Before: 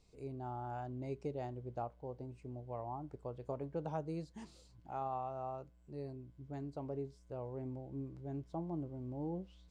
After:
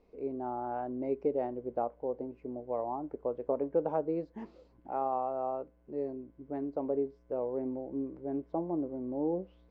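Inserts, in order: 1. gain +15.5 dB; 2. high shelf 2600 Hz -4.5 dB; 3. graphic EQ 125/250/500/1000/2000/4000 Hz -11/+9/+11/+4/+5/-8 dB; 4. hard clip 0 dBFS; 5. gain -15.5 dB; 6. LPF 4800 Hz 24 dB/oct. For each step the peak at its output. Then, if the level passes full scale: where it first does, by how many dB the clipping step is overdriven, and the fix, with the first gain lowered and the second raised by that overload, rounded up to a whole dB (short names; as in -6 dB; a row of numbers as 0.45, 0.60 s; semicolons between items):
-12.5, -13.0, -3.0, -3.0, -18.5, -18.5 dBFS; no overload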